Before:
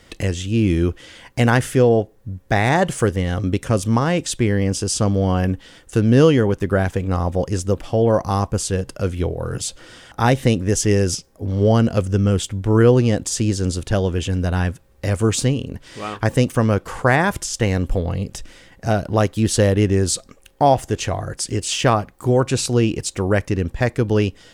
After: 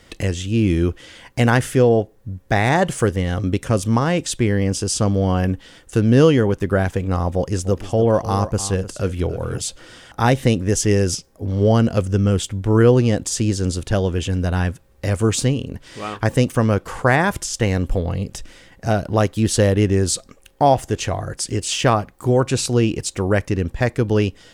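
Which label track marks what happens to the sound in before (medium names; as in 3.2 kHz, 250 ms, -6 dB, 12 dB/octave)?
7.330000	9.600000	delay 300 ms -13.5 dB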